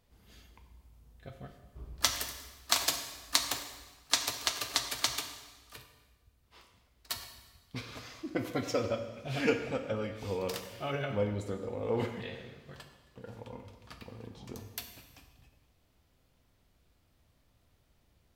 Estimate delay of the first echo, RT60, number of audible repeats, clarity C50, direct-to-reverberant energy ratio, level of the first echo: none, 1.3 s, none, 8.0 dB, 5.5 dB, none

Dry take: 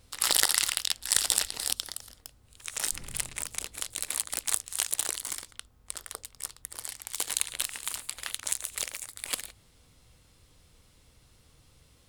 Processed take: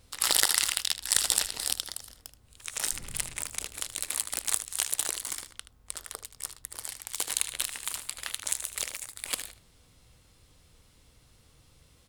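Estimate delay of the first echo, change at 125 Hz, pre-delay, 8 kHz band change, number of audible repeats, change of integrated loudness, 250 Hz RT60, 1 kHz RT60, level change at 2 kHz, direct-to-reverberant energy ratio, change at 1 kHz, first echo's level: 77 ms, +0.5 dB, none, 0.0 dB, 1, 0.0 dB, none, none, 0.0 dB, none, 0.0 dB, -13.0 dB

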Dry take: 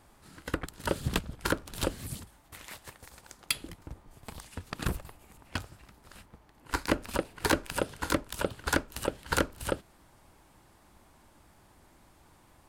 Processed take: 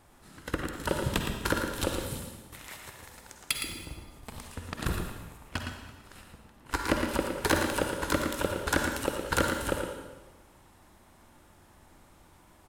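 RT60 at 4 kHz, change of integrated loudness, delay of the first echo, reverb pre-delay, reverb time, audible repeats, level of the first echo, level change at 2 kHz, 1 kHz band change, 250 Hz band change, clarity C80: 1.1 s, +2.0 dB, 0.114 s, 37 ms, 1.2 s, 1, -7.0 dB, +2.5 dB, +2.5 dB, +2.5 dB, 3.0 dB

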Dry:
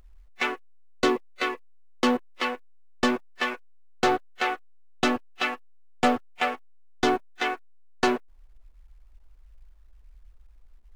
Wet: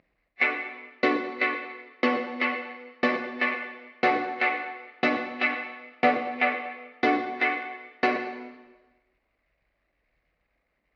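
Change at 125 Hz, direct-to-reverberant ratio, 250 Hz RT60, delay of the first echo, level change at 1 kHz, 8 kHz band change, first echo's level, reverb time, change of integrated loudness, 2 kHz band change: -5.0 dB, 4.5 dB, 1.2 s, none, +0.5 dB, under -15 dB, none, 1.2 s, +0.5 dB, +4.0 dB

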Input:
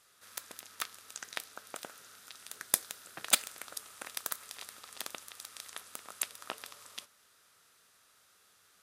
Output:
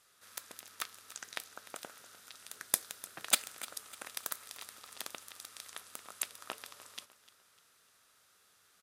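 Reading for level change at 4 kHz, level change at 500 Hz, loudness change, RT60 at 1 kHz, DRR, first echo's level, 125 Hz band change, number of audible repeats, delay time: -2.0 dB, -2.0 dB, -2.0 dB, none, none, -17.5 dB, -1.5 dB, 3, 0.3 s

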